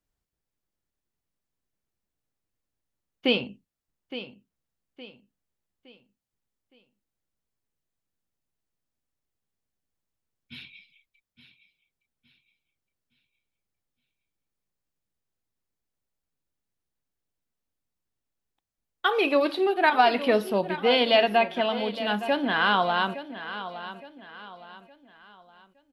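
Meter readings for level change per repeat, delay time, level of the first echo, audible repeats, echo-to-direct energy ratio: −8.5 dB, 865 ms, −13.0 dB, 3, −12.5 dB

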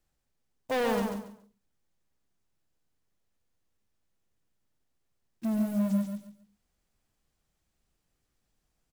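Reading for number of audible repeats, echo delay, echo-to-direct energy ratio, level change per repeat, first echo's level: 3, 140 ms, −4.5 dB, −12.5 dB, −5.0 dB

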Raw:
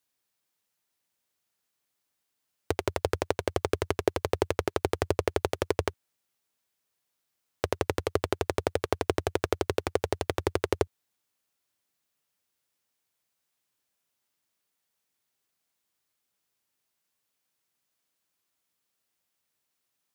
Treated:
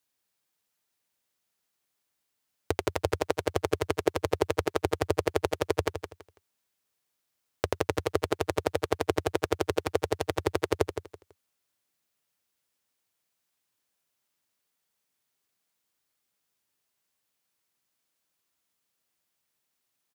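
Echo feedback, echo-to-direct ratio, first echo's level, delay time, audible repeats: 24%, −8.5 dB, −9.0 dB, 165 ms, 3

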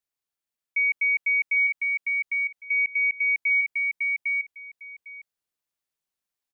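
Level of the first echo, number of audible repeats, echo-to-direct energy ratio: −3.0 dB, 2, −3.0 dB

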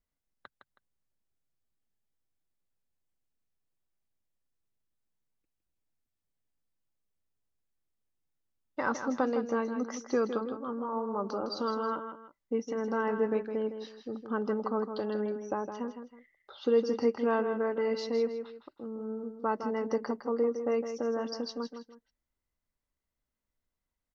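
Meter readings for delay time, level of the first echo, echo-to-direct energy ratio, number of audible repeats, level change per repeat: 160 ms, −8.5 dB, −8.0 dB, 2, −10.5 dB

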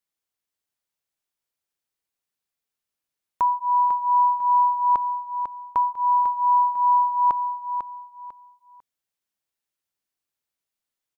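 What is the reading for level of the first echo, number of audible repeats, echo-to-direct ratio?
−7.5 dB, 3, −7.0 dB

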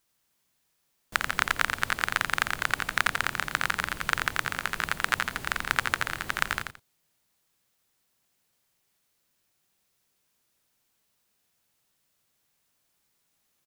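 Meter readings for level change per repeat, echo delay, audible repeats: −13.0 dB, 86 ms, 2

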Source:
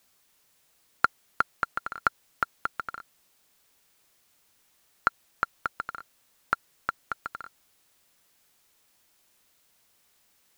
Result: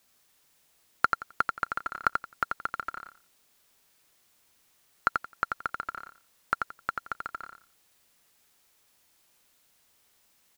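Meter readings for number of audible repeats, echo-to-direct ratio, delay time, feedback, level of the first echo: 3, −4.5 dB, 87 ms, 20%, −4.5 dB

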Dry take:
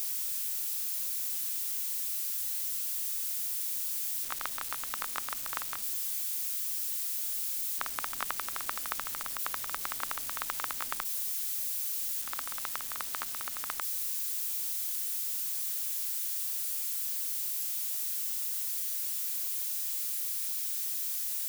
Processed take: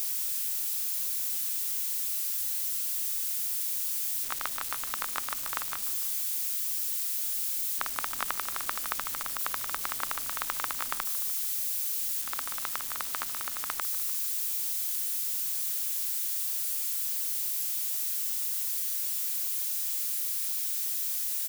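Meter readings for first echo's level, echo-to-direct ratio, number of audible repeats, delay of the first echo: −17.0 dB, −15.5 dB, 3, 149 ms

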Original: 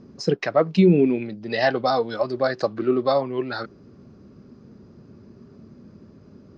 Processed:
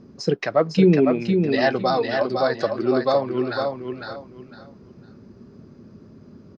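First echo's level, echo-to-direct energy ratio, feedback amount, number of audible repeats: −5.0 dB, −4.5 dB, 25%, 3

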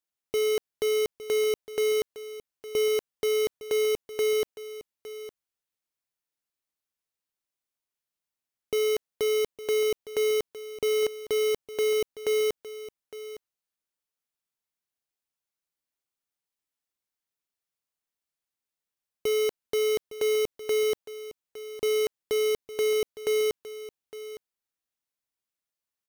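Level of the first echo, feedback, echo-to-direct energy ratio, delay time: −14.5 dB, repeats not evenly spaced, −14.5 dB, 860 ms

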